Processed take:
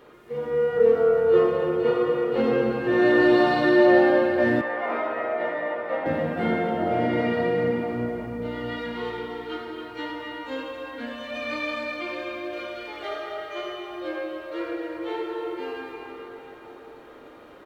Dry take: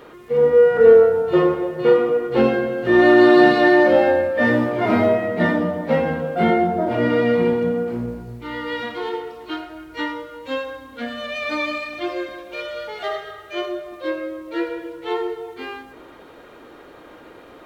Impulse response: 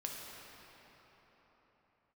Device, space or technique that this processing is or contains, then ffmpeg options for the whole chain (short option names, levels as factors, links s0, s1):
cave: -filter_complex "[0:a]aecho=1:1:268:0.316[s0];[1:a]atrim=start_sample=2205[s1];[s0][s1]afir=irnorm=-1:irlink=0,asettb=1/sr,asplit=3[s2][s3][s4];[s2]atrim=end=4.614[s5];[s3]atrim=start=4.61:end=6.06,asetpts=PTS-STARTPTS,afade=t=in:d=0.004:c=qsin,afade=t=out:st=1.446:d=0.004:c=qsin,acrossover=split=420 2800:gain=0.0708 1 0.224[s6][s7][s8];[s6][s7][s8]amix=inputs=3:normalize=0[s9];[s4]atrim=start=6.056[s10];[s5][s9]acrossfade=d=0.004:c1=hsin:c2=qsin[s11];[s11][s10]acrossfade=d=0.004:c1=qsin:c2=hsin,volume=0.562"